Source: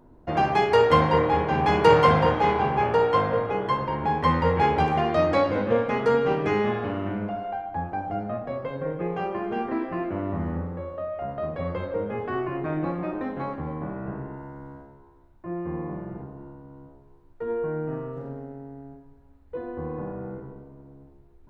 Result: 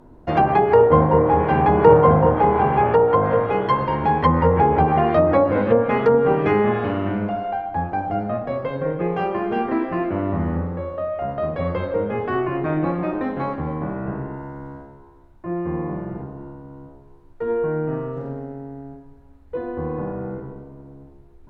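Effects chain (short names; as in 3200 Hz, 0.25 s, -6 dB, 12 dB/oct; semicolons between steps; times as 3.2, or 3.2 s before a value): treble ducked by the level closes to 880 Hz, closed at -16.5 dBFS; gain +6 dB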